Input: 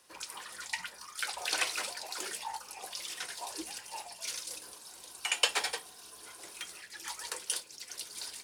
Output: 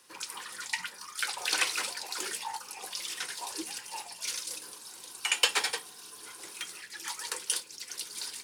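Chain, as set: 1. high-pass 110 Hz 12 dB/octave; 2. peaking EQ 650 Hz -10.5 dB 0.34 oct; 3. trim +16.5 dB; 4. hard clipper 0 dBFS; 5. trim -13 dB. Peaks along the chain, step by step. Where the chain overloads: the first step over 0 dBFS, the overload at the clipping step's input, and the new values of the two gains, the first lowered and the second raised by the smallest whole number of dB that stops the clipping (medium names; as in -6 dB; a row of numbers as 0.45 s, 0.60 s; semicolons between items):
-10.5 dBFS, -10.5 dBFS, +6.0 dBFS, 0.0 dBFS, -13.0 dBFS; step 3, 6.0 dB; step 3 +10.5 dB, step 5 -7 dB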